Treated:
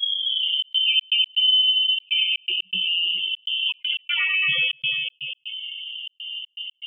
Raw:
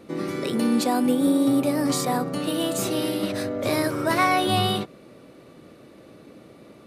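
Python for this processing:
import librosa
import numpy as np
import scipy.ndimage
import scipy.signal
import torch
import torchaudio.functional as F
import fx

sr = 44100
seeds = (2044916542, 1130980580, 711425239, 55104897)

p1 = fx.tape_start_head(x, sr, length_s=0.49)
p2 = fx.pitch_keep_formants(p1, sr, semitones=-1.0)
p3 = fx.low_shelf(p2, sr, hz=100.0, db=4.5)
p4 = fx.comb_fb(p3, sr, f0_hz=90.0, decay_s=0.23, harmonics='all', damping=0.0, mix_pct=50)
p5 = p4 + fx.echo_single(p4, sr, ms=237, db=-3.0, dry=0)
p6 = fx.spec_gate(p5, sr, threshold_db=-10, keep='strong')
p7 = fx.comb_fb(p6, sr, f0_hz=240.0, decay_s=0.17, harmonics='all', damping=0.0, mix_pct=90)
p8 = fx.echo_multitap(p7, sr, ms=(95, 493), db=(-5.5, -19.0))
p9 = fx.freq_invert(p8, sr, carrier_hz=3300)
p10 = fx.step_gate(p9, sr, bpm=121, pattern='xxxxx.xx.x.', floor_db=-60.0, edge_ms=4.5)
p11 = fx.env_flatten(p10, sr, amount_pct=50)
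y = F.gain(torch.from_numpy(p11), 8.5).numpy()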